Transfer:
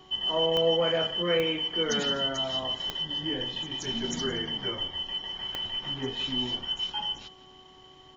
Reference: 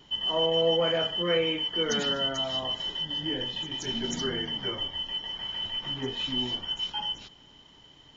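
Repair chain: de-click; de-hum 374 Hz, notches 3; inverse comb 0.172 s -18.5 dB

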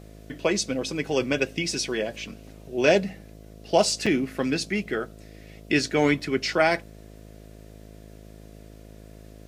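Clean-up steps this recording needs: de-hum 53.1 Hz, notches 13; interpolate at 4.06/6.2, 4.9 ms

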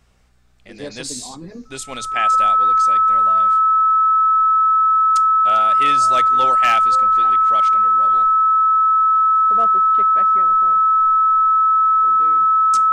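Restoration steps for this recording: clip repair -8.5 dBFS; de-hum 61.6 Hz, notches 4; notch 1300 Hz, Q 30

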